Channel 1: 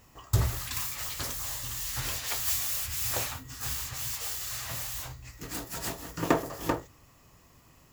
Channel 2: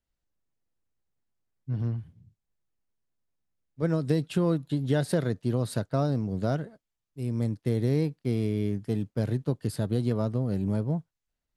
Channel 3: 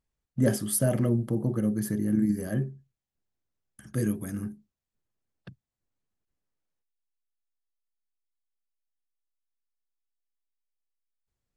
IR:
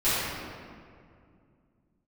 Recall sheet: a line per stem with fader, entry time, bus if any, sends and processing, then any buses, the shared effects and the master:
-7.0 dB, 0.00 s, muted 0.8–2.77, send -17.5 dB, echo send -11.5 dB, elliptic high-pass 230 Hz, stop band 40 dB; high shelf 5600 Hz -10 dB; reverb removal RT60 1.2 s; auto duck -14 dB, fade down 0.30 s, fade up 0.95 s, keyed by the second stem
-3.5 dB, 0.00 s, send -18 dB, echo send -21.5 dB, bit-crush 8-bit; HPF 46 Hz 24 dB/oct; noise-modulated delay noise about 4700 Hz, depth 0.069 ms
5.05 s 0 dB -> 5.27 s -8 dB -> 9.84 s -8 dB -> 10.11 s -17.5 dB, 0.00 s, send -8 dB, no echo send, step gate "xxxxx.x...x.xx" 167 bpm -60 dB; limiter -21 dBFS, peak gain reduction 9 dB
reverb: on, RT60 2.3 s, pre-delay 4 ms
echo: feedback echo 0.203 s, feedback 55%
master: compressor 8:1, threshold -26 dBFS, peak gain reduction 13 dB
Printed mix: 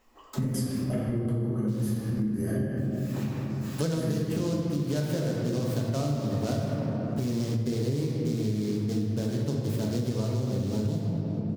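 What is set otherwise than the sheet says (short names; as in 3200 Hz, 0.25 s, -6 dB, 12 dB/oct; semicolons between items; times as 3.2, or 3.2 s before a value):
stem 2 -3.5 dB -> +8.0 dB; reverb return +8.0 dB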